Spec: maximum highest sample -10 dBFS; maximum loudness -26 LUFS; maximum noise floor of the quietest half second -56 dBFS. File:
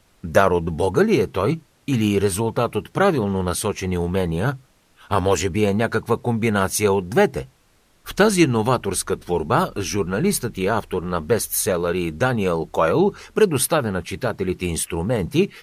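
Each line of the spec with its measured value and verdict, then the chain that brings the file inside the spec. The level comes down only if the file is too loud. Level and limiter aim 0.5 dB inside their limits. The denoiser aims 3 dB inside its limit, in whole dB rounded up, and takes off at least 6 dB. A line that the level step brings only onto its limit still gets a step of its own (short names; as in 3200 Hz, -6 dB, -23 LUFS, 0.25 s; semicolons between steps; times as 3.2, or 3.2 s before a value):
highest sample -2.5 dBFS: fail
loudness -21.0 LUFS: fail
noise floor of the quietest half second -59 dBFS: OK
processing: gain -5.5 dB; limiter -10.5 dBFS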